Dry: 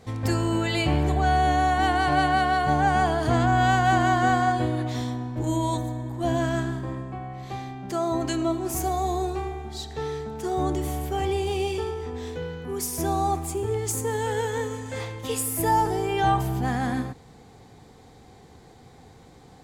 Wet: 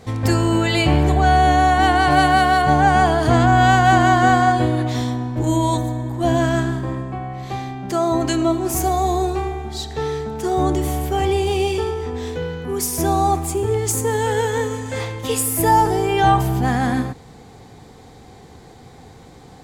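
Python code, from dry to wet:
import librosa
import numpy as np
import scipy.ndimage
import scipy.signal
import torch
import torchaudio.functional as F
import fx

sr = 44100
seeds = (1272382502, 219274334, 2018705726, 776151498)

y = fx.high_shelf(x, sr, hz=8900.0, db=9.5, at=(2.1, 2.62))
y = y * 10.0 ** (7.0 / 20.0)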